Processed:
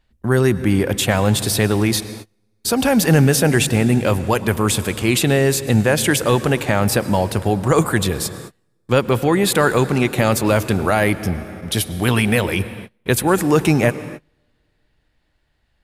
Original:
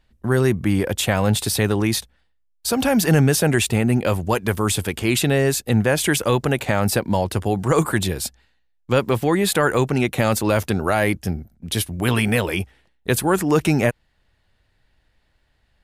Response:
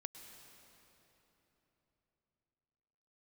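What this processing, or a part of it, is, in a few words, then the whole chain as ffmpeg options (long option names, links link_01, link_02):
keyed gated reverb: -filter_complex "[0:a]asplit=3[link_01][link_02][link_03];[1:a]atrim=start_sample=2205[link_04];[link_02][link_04]afir=irnorm=-1:irlink=0[link_05];[link_03]apad=whole_len=698350[link_06];[link_05][link_06]sidechaingate=range=-33dB:threshold=-51dB:ratio=16:detection=peak,volume=1.5dB[link_07];[link_01][link_07]amix=inputs=2:normalize=0,volume=-2dB"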